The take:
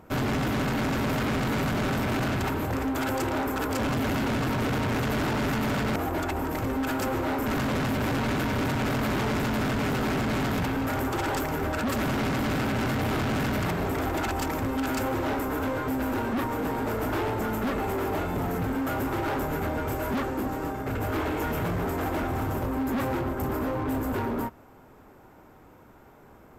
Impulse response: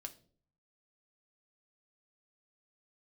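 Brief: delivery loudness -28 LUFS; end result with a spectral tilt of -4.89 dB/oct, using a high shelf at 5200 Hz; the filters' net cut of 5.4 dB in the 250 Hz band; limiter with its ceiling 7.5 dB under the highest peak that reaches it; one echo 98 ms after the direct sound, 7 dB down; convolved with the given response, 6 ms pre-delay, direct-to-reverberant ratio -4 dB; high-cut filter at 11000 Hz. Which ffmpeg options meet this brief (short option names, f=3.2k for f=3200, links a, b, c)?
-filter_complex "[0:a]lowpass=11k,equalizer=f=250:t=o:g=-6.5,highshelf=f=5.2k:g=-7.5,alimiter=level_in=3.5dB:limit=-24dB:level=0:latency=1,volume=-3.5dB,aecho=1:1:98:0.447,asplit=2[a][b];[1:a]atrim=start_sample=2205,adelay=6[c];[b][c]afir=irnorm=-1:irlink=0,volume=8.5dB[d];[a][d]amix=inputs=2:normalize=0,volume=-0.5dB"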